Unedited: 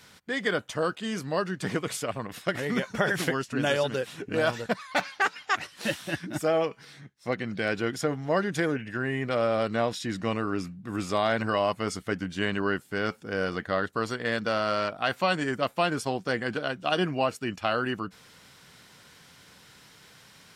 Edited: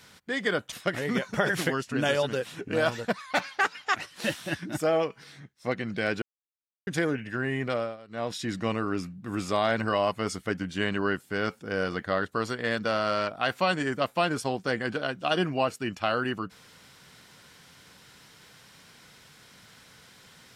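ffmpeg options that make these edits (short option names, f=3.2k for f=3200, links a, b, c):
-filter_complex "[0:a]asplit=6[a][b][c][d][e][f];[a]atrim=end=0.722[g];[b]atrim=start=2.328:end=7.83,asetpts=PTS-STARTPTS,afade=t=out:st=5.498:d=0.004:c=hsin[h];[c]atrim=start=7.83:end=8.48,asetpts=PTS-STARTPTS,volume=0[i];[d]atrim=start=8.48:end=9.58,asetpts=PTS-STARTPTS,afade=t=in:d=0.004:c=hsin,afade=t=out:st=0.81:d=0.29:silence=0.0891251[j];[e]atrim=start=9.58:end=9.69,asetpts=PTS-STARTPTS,volume=-21dB[k];[f]atrim=start=9.69,asetpts=PTS-STARTPTS,afade=t=in:d=0.29:silence=0.0891251[l];[h][i][j][k][l]concat=n=5:v=0:a=1[m];[g][m]acrossfade=d=0.004:c1=hsin:c2=hsin"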